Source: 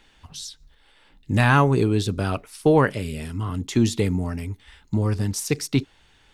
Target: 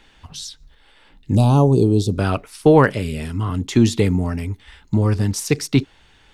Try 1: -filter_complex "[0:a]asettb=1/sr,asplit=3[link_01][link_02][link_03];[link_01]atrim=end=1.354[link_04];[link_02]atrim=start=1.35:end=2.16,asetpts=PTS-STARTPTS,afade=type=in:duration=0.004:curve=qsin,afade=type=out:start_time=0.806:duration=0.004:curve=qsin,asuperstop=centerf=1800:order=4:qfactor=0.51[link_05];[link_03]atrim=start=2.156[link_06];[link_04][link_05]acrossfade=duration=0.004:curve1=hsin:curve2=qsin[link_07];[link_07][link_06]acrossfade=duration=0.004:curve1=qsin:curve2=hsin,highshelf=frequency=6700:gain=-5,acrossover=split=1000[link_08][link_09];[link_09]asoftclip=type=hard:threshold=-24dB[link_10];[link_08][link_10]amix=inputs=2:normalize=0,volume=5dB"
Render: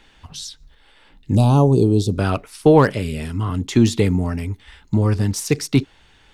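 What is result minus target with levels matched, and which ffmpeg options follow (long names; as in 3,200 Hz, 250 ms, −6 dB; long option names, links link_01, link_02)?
hard clipping: distortion +21 dB
-filter_complex "[0:a]asettb=1/sr,asplit=3[link_01][link_02][link_03];[link_01]atrim=end=1.354[link_04];[link_02]atrim=start=1.35:end=2.16,asetpts=PTS-STARTPTS,afade=type=in:duration=0.004:curve=qsin,afade=type=out:start_time=0.806:duration=0.004:curve=qsin,asuperstop=centerf=1800:order=4:qfactor=0.51[link_05];[link_03]atrim=start=2.156[link_06];[link_04][link_05]acrossfade=duration=0.004:curve1=hsin:curve2=qsin[link_07];[link_07][link_06]acrossfade=duration=0.004:curve1=qsin:curve2=hsin,highshelf=frequency=6700:gain=-5,acrossover=split=1000[link_08][link_09];[link_09]asoftclip=type=hard:threshold=-15.5dB[link_10];[link_08][link_10]amix=inputs=2:normalize=0,volume=5dB"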